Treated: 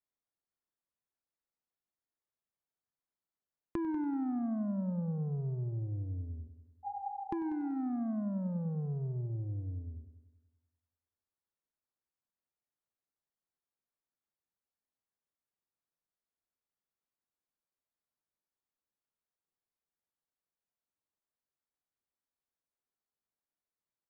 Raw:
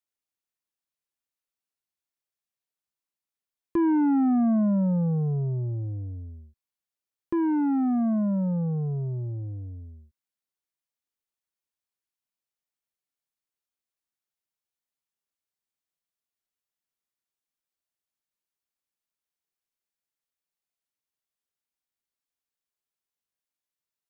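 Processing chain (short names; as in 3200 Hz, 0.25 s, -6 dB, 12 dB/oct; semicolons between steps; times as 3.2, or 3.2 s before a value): Wiener smoothing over 15 samples; spectral repair 6.87–7.71, 440–910 Hz after; compressor 4:1, threshold -37 dBFS, peak gain reduction 13 dB; multi-head echo 96 ms, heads first and second, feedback 43%, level -16 dB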